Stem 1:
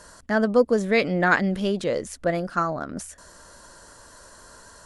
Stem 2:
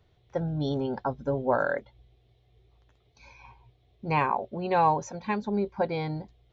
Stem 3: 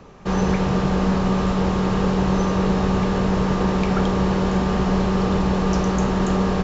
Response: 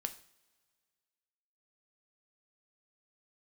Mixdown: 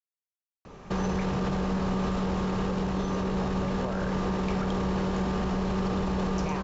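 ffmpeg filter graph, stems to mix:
-filter_complex "[1:a]adelay=2350,volume=0.398[s0];[2:a]alimiter=limit=0.15:level=0:latency=1:release=16,adelay=650,volume=0.708[s1];[s0][s1]amix=inputs=2:normalize=0,dynaudnorm=f=640:g=3:m=1.78,alimiter=limit=0.0891:level=0:latency=1:release=493"

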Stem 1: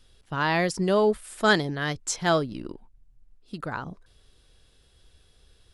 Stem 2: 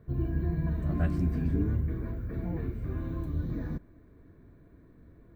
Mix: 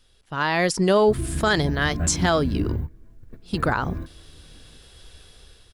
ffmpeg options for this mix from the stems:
-filter_complex "[0:a]lowshelf=f=430:g=-3.5,dynaudnorm=f=260:g=5:m=4.47,volume=1.06,asplit=2[s0][s1];[1:a]highshelf=f=5000:g=6,adelay=1000,volume=1.26[s2];[s1]apad=whole_len=280329[s3];[s2][s3]sidechaingate=range=0.0708:threshold=0.0112:ratio=16:detection=peak[s4];[s0][s4]amix=inputs=2:normalize=0,alimiter=limit=0.316:level=0:latency=1:release=101"

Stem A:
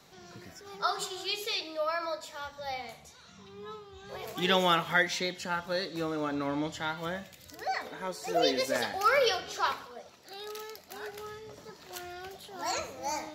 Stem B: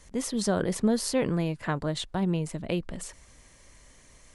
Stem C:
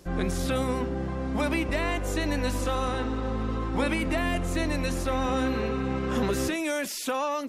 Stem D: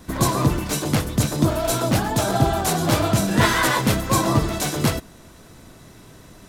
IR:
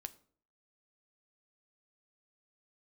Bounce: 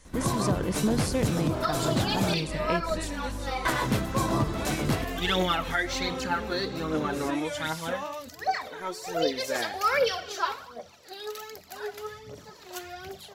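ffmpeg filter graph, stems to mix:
-filter_complex "[0:a]aphaser=in_gain=1:out_gain=1:delay=3.2:decay=0.59:speed=1.3:type=triangular,adelay=800,volume=0.841,asplit=2[s0][s1];[s1]volume=0.562[s2];[1:a]volume=0.891[s3];[2:a]flanger=delay=18.5:depth=7.1:speed=2.3,adelay=800,volume=0.562[s4];[3:a]highshelf=f=4500:g=-6,adelay=50,volume=0.447,asplit=3[s5][s6][s7];[s5]atrim=end=2.34,asetpts=PTS-STARTPTS,afade=t=out:st=2.336:d=0.004:c=hsin[s8];[s6]atrim=start=2.34:end=3.65,asetpts=PTS-STARTPTS,volume=0[s9];[s7]atrim=start=3.65,asetpts=PTS-STARTPTS,afade=t=in:d=0.004:c=hsin[s10];[s8][s9][s10]concat=n=3:v=0:a=1,asplit=2[s11][s12];[s12]volume=0.501[s13];[4:a]atrim=start_sample=2205[s14];[s2][s13]amix=inputs=2:normalize=0[s15];[s15][s14]afir=irnorm=-1:irlink=0[s16];[s0][s3][s4][s11][s16]amix=inputs=5:normalize=0,alimiter=limit=0.178:level=0:latency=1:release=248"

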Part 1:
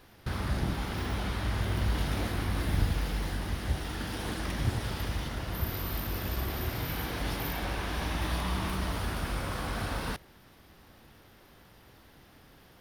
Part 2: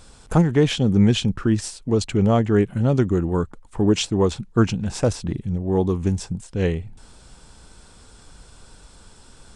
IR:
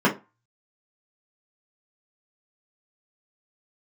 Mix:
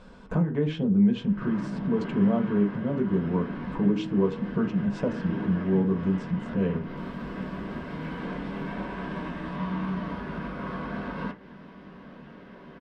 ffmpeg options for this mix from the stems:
-filter_complex "[0:a]bandreject=f=61.18:t=h:w=4,bandreject=f=122.36:t=h:w=4,acompressor=threshold=0.01:ratio=6,adelay=1150,volume=1.26,asplit=2[s0][s1];[s1]volume=0.211[s2];[1:a]bandreject=f=158.9:t=h:w=4,bandreject=f=317.8:t=h:w=4,bandreject=f=476.7:t=h:w=4,bandreject=f=635.6:t=h:w=4,bandreject=f=794.5:t=h:w=4,bandreject=f=953.4:t=h:w=4,bandreject=f=1112.3:t=h:w=4,bandreject=f=1271.2:t=h:w=4,bandreject=f=1430.1:t=h:w=4,bandreject=f=1589:t=h:w=4,bandreject=f=1747.9:t=h:w=4,bandreject=f=1906.8:t=h:w=4,acompressor=threshold=0.0316:ratio=3,volume=0.668,asplit=3[s3][s4][s5];[s4]volume=0.15[s6];[s5]apad=whole_len=615260[s7];[s0][s7]sidechaincompress=threshold=0.00447:ratio=8:attack=16:release=145[s8];[2:a]atrim=start_sample=2205[s9];[s2][s6]amix=inputs=2:normalize=0[s10];[s10][s9]afir=irnorm=-1:irlink=0[s11];[s8][s3][s11]amix=inputs=3:normalize=0,lowpass=2800"

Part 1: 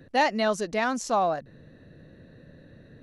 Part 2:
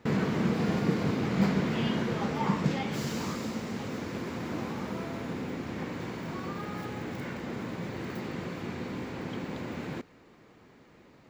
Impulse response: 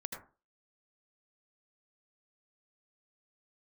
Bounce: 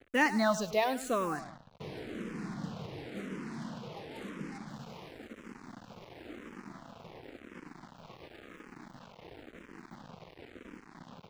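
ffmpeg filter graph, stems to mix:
-filter_complex "[0:a]volume=1,asplit=2[s0][s1];[s1]volume=0.178[s2];[1:a]acrossover=split=2700[s3][s4];[s4]acompressor=threshold=0.00178:ratio=4:attack=1:release=60[s5];[s3][s5]amix=inputs=2:normalize=0,highpass=130,adelay=1750,volume=0.282,asplit=2[s6][s7];[s7]volume=0.158[s8];[2:a]atrim=start_sample=2205[s9];[s8][s9]afir=irnorm=-1:irlink=0[s10];[s2]aecho=0:1:103|206|309|412|515:1|0.34|0.116|0.0393|0.0134[s11];[s0][s6][s10][s11]amix=inputs=4:normalize=0,equalizer=f=310:w=4.8:g=2.5,acrusher=bits=6:mix=0:aa=0.5,asplit=2[s12][s13];[s13]afreqshift=-0.95[s14];[s12][s14]amix=inputs=2:normalize=1"

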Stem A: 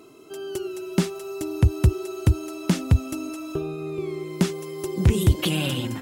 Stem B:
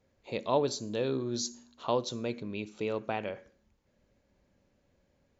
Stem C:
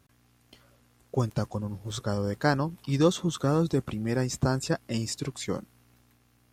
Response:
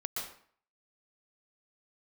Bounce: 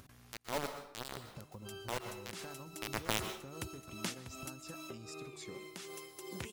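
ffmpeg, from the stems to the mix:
-filter_complex "[0:a]highpass=f=1300:p=1,tremolo=f=2.6:d=0.78,adelay=1350,volume=0.422,asplit=2[s0][s1];[s1]volume=0.141[s2];[1:a]acrusher=bits=3:mix=0:aa=0.000001,volume=0.794,afade=t=in:st=2.72:d=0.52:silence=0.237137,asplit=2[s3][s4];[s4]volume=0.562[s5];[2:a]bandreject=f=150.3:t=h:w=4,bandreject=f=300.6:t=h:w=4,bandreject=f=450.9:t=h:w=4,bandreject=f=601.2:t=h:w=4,bandreject=f=751.5:t=h:w=4,acompressor=threshold=0.0224:ratio=6,volume=0.158[s6];[3:a]atrim=start_sample=2205[s7];[s2][s5]amix=inputs=2:normalize=0[s8];[s8][s7]afir=irnorm=-1:irlink=0[s9];[s0][s3][s6][s9]amix=inputs=4:normalize=0,acompressor=mode=upward:threshold=0.00891:ratio=2.5"

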